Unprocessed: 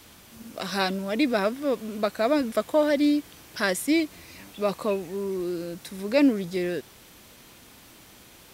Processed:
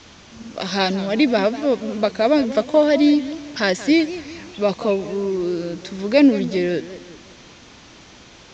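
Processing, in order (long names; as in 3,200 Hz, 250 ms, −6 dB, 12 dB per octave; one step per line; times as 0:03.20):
dynamic equaliser 1,300 Hz, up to −7 dB, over −45 dBFS, Q 2.6
Butterworth low-pass 6,900 Hz 72 dB per octave
feedback echo with a swinging delay time 185 ms, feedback 44%, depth 206 cents, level −15 dB
level +7 dB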